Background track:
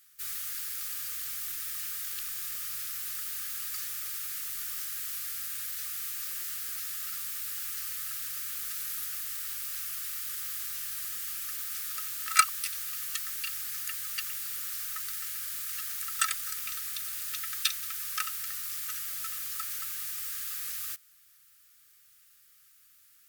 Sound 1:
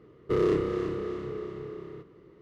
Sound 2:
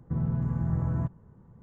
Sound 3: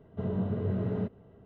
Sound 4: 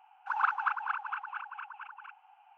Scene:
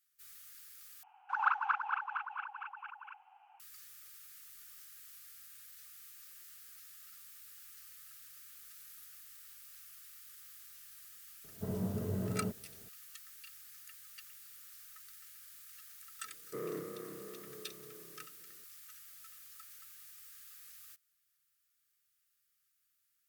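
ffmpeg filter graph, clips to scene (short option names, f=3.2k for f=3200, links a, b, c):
-filter_complex "[0:a]volume=-18dB[a];[3:a]equalizer=f=73:t=o:w=0.77:g=-2.5[b];[1:a]highpass=f=160:w=0.5412,highpass=f=160:w=1.3066,equalizer=f=240:t=q:w=4:g=-4,equalizer=f=370:t=q:w=4:g=-8,equalizer=f=910:t=q:w=4:g=-8,lowpass=f=2.1k:w=0.5412,lowpass=f=2.1k:w=1.3066[c];[a]asplit=2[d][e];[d]atrim=end=1.034[f];[4:a]atrim=end=2.57,asetpts=PTS-STARTPTS,volume=-2dB[g];[e]atrim=start=3.596[h];[b]atrim=end=1.45,asetpts=PTS-STARTPTS,volume=-5.5dB,afade=t=in:d=0.004:c=hsin,afade=t=out:st=1.446:d=0.004:c=hsin,adelay=11440[i];[c]atrim=end=2.41,asetpts=PTS-STARTPTS,volume=-11.5dB,afade=t=in:d=0.004:c=hsin,afade=t=out:st=2.406:d=0.004:c=hsin,adelay=16230[j];[f][g]acrossfade=d=0.004:c1=hsin:c2=hsin[k];[k][h]acrossfade=d=0.004:c1=hsin:c2=hsin[l];[l][i][j]amix=inputs=3:normalize=0"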